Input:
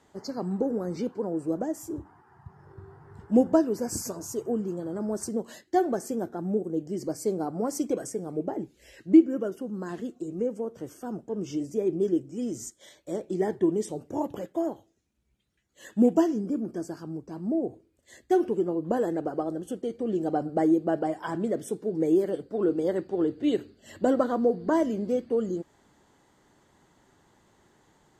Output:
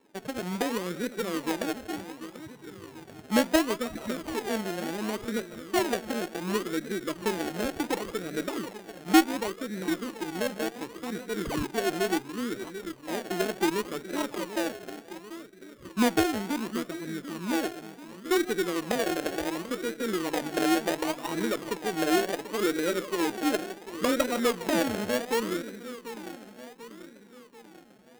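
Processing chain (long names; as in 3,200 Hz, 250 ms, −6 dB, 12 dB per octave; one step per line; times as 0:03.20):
high-pass filter 180 Hz 12 dB per octave
notch filter 780 Hz, Q 19
in parallel at +1.5 dB: downward compressor, threshold −38 dBFS, peak gain reduction 24 dB
on the sum: spectral peaks only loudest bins 16
on a send: echo with a time of its own for lows and highs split 520 Hz, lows 740 ms, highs 157 ms, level −11 dB
on the sum: sound drawn into the spectrogram fall, 0:11.45–0:11.67, 820–4,000 Hz −29 dBFS
sample-and-hold swept by an LFO 32×, swing 60% 0.69 Hz
windowed peak hold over 5 samples
level −3.5 dB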